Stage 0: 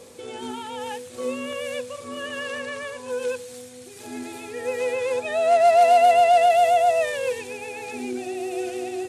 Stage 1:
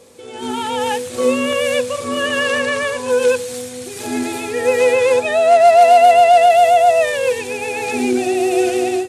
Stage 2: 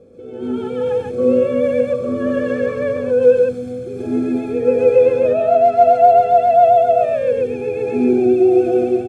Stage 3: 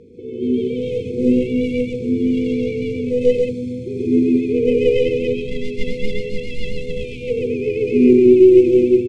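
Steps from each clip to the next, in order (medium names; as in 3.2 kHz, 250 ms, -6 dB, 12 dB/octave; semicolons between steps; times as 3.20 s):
level rider gain up to 14.5 dB; trim -1 dB
boxcar filter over 46 samples; loudspeakers at several distances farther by 29 m -12 dB, 46 m -1 dB; trim +4.5 dB
tracing distortion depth 0.13 ms; brick-wall FIR band-stop 490–2000 Hz; distance through air 66 m; trim +4 dB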